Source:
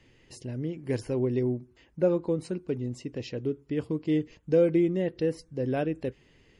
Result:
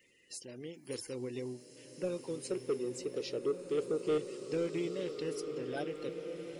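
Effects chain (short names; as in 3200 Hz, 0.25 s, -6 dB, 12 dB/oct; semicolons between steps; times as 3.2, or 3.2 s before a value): bin magnitudes rounded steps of 30 dB; 2.45–4.18 bell 420 Hz +14 dB 0.89 oct; wow and flutter 21 cents; RIAA curve recording; soft clip -19 dBFS, distortion -15 dB; bloom reverb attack 1.84 s, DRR 6 dB; gain -6.5 dB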